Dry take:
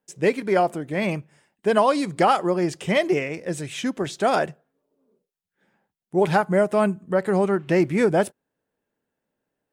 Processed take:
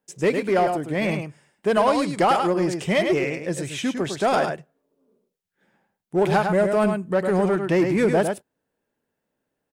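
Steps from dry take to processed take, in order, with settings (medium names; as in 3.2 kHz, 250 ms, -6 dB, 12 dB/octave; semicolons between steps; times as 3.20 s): delay 104 ms -7 dB; in parallel at -3.5 dB: hard clipper -20 dBFS, distortion -8 dB; on the sum: trim -3.5 dB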